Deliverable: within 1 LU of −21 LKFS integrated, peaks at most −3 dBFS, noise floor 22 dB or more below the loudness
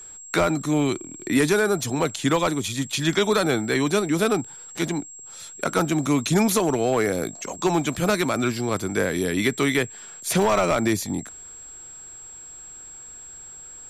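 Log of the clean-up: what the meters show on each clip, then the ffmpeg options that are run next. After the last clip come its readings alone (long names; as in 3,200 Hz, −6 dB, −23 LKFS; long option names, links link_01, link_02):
interfering tone 7,600 Hz; level of the tone −39 dBFS; integrated loudness −23.0 LKFS; sample peak −8.0 dBFS; target loudness −21.0 LKFS
→ -af "bandreject=frequency=7600:width=30"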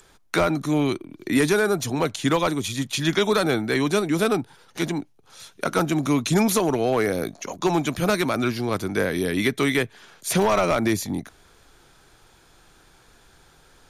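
interfering tone none found; integrated loudness −23.0 LKFS; sample peak −8.5 dBFS; target loudness −21.0 LKFS
→ -af "volume=2dB"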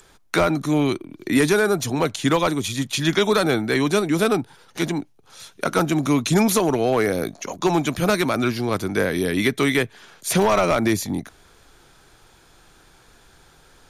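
integrated loudness −21.0 LKFS; sample peak −6.5 dBFS; background noise floor −54 dBFS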